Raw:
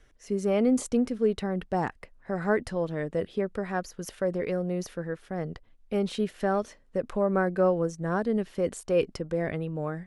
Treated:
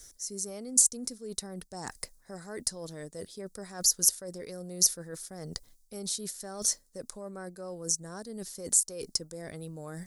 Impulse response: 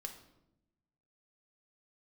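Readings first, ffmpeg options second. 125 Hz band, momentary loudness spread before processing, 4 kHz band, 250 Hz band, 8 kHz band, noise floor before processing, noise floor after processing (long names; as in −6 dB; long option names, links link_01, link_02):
−11.5 dB, 10 LU, +9.5 dB, −14.0 dB, +19.0 dB, −59 dBFS, −63 dBFS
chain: -af "areverse,acompressor=threshold=-38dB:ratio=10,areverse,aexciter=amount=15.1:drive=7.2:freq=4400"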